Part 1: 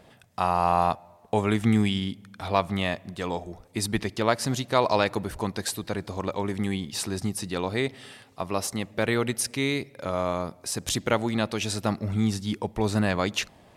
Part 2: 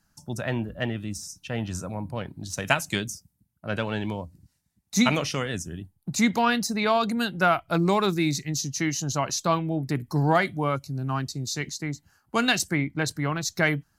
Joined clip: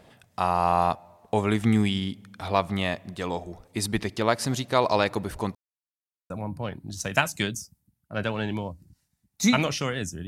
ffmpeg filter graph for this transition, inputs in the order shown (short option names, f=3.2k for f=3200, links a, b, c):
-filter_complex "[0:a]apad=whole_dur=10.27,atrim=end=10.27,asplit=2[a][b];[a]atrim=end=5.55,asetpts=PTS-STARTPTS,afade=t=out:st=5.546:d=0.004:c=hsin[c];[b]atrim=start=5.55:end=6.3,asetpts=PTS-STARTPTS,volume=0[d];[1:a]atrim=start=1.83:end=5.8,asetpts=PTS-STARTPTS,afade=t=in:d=0.004:c=hsin[e];[c][d][e]concat=n=3:v=0:a=1"